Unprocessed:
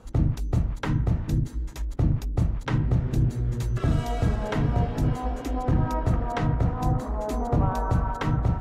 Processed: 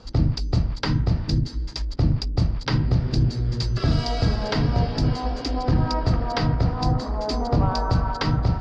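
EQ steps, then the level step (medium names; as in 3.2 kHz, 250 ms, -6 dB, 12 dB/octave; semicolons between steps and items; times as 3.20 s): resonant low-pass 4.8 kHz, resonance Q 13; +2.5 dB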